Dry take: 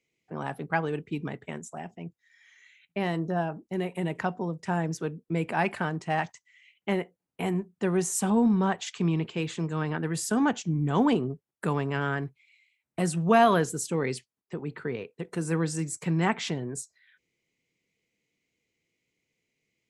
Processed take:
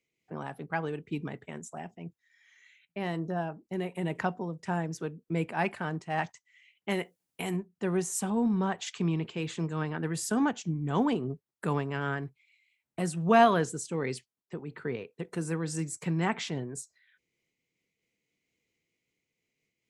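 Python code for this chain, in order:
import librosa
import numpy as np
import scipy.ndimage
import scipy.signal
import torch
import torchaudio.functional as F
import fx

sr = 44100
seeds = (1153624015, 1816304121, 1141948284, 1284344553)

y = fx.high_shelf(x, sr, hz=2500.0, db=12.0, at=(6.89, 7.55), fade=0.02)
y = fx.lowpass(y, sr, hz=9800.0, slope=24, at=(13.24, 14.15))
y = fx.am_noise(y, sr, seeds[0], hz=5.7, depth_pct=60)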